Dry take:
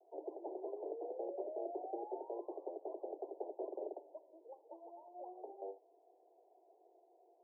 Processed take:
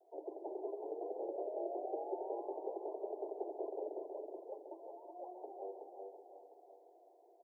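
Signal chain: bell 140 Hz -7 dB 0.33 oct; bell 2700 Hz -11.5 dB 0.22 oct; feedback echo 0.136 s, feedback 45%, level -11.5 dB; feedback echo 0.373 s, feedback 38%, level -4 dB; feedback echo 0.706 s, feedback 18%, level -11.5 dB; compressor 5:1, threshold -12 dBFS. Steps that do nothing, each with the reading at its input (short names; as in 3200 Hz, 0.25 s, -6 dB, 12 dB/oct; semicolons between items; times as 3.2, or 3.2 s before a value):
bell 140 Hz: input band starts at 250 Hz; bell 2700 Hz: input band ends at 1000 Hz; compressor, threshold -12 dBFS: input peak -27.0 dBFS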